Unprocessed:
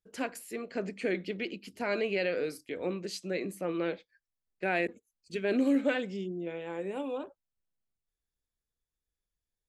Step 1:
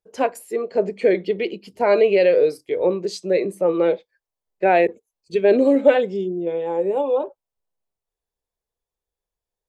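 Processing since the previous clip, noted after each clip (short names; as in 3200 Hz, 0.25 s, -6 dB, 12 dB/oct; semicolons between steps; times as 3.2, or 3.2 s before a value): spectral noise reduction 7 dB; band shelf 640 Hz +10 dB; gain +7 dB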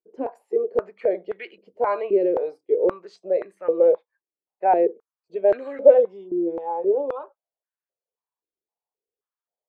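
stepped band-pass 3.8 Hz 340–1600 Hz; gain +4 dB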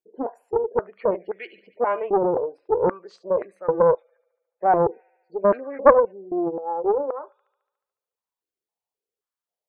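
thin delay 72 ms, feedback 68%, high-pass 2400 Hz, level -15 dB; spectral gate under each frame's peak -30 dB strong; Doppler distortion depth 0.45 ms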